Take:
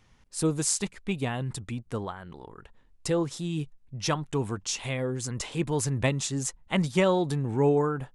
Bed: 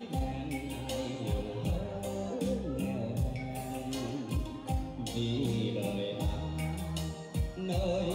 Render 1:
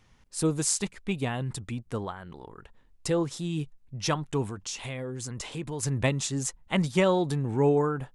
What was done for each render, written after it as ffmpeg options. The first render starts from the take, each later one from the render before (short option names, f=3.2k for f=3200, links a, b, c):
-filter_complex "[0:a]asettb=1/sr,asplit=3[a][b][c];[a]atrim=end=4.464[d];[b]atrim=start=4.46:end=5.83,asetpts=PTS-STARTPTS,afade=t=in:d=0.004:c=qsin,afade=t=out:st=1.366:d=0.004:c=qsin,acompressor=threshold=-33dB:ratio=2.5:attack=3.2:release=140:knee=1:detection=peak[e];[c]atrim=start=5.826[f];[d][e]acrossfade=d=0.004:c1=hsin:c2=qsin[g];[g][f]acrossfade=d=0.004:c1=qsin:c2=hsin"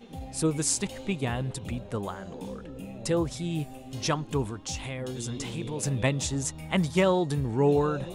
-filter_complex "[1:a]volume=-6.5dB[a];[0:a][a]amix=inputs=2:normalize=0"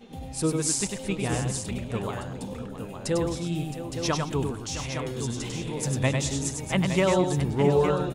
-af "aecho=1:1:99|216|666|863:0.596|0.141|0.251|0.398"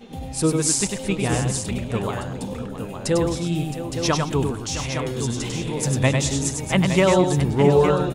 -af "volume=5.5dB"